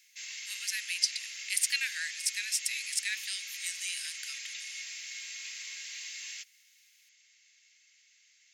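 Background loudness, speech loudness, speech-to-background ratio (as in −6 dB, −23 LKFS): −39.5 LKFS, −33.0 LKFS, 6.5 dB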